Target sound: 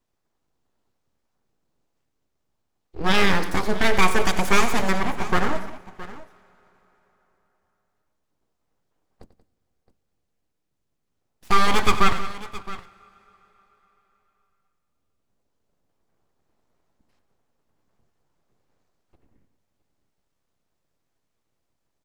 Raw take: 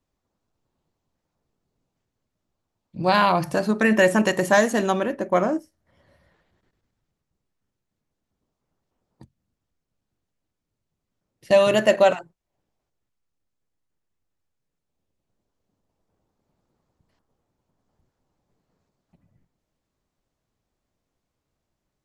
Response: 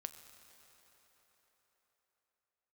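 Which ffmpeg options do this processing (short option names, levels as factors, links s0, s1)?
-filter_complex "[0:a]aeval=exprs='abs(val(0))':c=same,aecho=1:1:92|183|667:0.211|0.168|0.15,asplit=2[s0][s1];[1:a]atrim=start_sample=2205[s2];[s1][s2]afir=irnorm=-1:irlink=0,volume=0.398[s3];[s0][s3]amix=inputs=2:normalize=0"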